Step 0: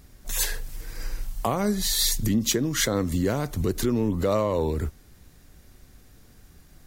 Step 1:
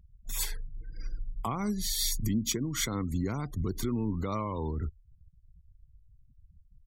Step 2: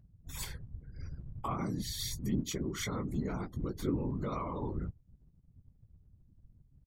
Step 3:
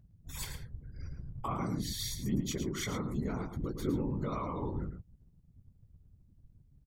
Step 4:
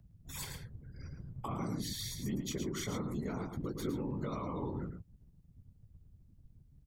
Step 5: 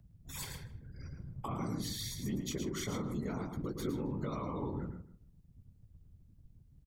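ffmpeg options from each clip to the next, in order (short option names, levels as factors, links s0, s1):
-af "afftfilt=real='re*gte(hypot(re,im),0.0141)':imag='im*gte(hypot(re,im),0.0141)':win_size=1024:overlap=0.75,aecho=1:1:0.9:0.61,volume=0.376"
-filter_complex "[0:a]highshelf=f=4200:g=-9,asplit=2[s0][s1];[s1]adelay=16,volume=0.447[s2];[s0][s2]amix=inputs=2:normalize=0,afftfilt=real='hypot(re,im)*cos(2*PI*random(0))':imag='hypot(re,im)*sin(2*PI*random(1))':win_size=512:overlap=0.75,volume=1.33"
-filter_complex "[0:a]asplit=2[s0][s1];[s1]adelay=110.8,volume=0.398,highshelf=f=4000:g=-2.49[s2];[s0][s2]amix=inputs=2:normalize=0"
-filter_complex "[0:a]acrossover=split=91|410|1100|2800[s0][s1][s2][s3][s4];[s0]acompressor=threshold=0.00224:ratio=4[s5];[s1]acompressor=threshold=0.0141:ratio=4[s6];[s2]acompressor=threshold=0.00631:ratio=4[s7];[s3]acompressor=threshold=0.00224:ratio=4[s8];[s4]acompressor=threshold=0.00794:ratio=4[s9];[s5][s6][s7][s8][s9]amix=inputs=5:normalize=0,volume=1.12"
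-filter_complex "[0:a]asplit=2[s0][s1];[s1]adelay=156,lowpass=f=2200:p=1,volume=0.2,asplit=2[s2][s3];[s3]adelay=156,lowpass=f=2200:p=1,volume=0.17[s4];[s0][s2][s4]amix=inputs=3:normalize=0"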